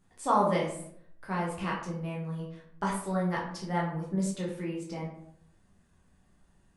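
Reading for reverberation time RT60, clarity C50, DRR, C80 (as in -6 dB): 0.70 s, 4.5 dB, -4.0 dB, 8.0 dB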